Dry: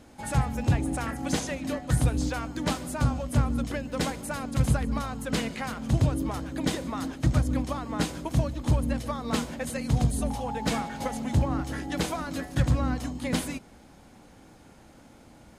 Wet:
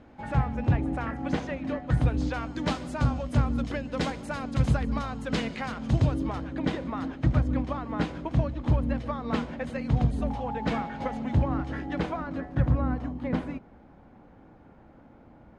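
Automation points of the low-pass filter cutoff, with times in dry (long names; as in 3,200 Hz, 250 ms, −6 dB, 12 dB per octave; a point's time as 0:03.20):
0:01.86 2,300 Hz
0:02.57 4,700 Hz
0:06.10 4,700 Hz
0:06.59 2,600 Hz
0:11.77 2,600 Hz
0:12.43 1,500 Hz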